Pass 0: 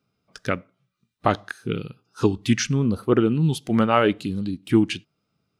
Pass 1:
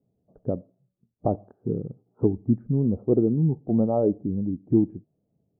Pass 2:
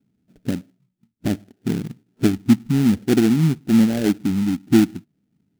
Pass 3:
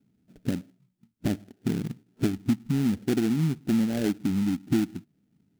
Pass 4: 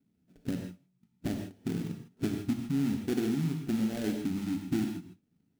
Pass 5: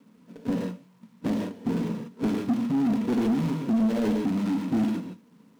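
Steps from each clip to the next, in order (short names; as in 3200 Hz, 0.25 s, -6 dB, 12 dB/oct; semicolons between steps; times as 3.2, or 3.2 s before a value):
steep low-pass 720 Hz 36 dB/oct; in parallel at 0 dB: compressor, threshold -30 dBFS, peak gain reduction 16.5 dB; on the sum: gain -3.5 dB
bell 260 Hz +8 dB 1.9 oct; in parallel at -5.5 dB: sample-rate reducer 1100 Hz, jitter 20%; on the sum: graphic EQ 125/250/500/1000 Hz -3/+3/-9/-7 dB; gain -2.5 dB
compressor 3:1, threshold -24 dBFS, peak gain reduction 12 dB
non-linear reverb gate 0.18 s flat, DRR 2.5 dB; gain -6.5 dB
G.711 law mismatch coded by mu; small resonant body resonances 220/470/960 Hz, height 14 dB, ringing for 30 ms; overdrive pedal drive 21 dB, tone 4400 Hz, clips at -7.5 dBFS; gain -8.5 dB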